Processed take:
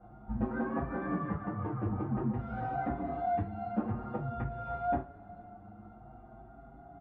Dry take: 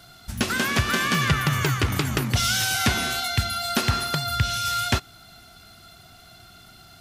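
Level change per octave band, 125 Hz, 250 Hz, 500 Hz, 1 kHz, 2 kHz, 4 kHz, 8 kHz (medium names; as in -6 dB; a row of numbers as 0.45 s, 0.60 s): -11.5 dB, -5.0 dB, -4.0 dB, -8.0 dB, -21.5 dB, under -40 dB, under -40 dB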